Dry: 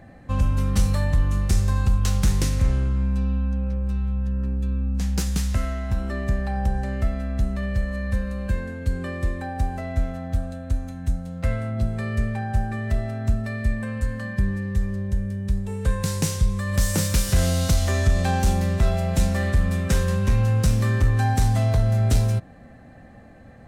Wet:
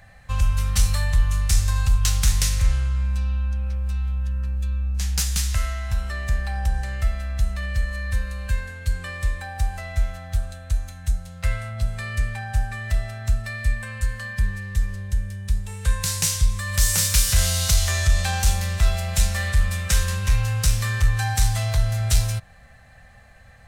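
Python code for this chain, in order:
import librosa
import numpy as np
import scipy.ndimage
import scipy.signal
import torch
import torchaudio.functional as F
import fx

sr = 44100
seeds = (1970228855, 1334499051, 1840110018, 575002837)

y = fx.tone_stack(x, sr, knobs='10-0-10')
y = y * 10.0 ** (8.5 / 20.0)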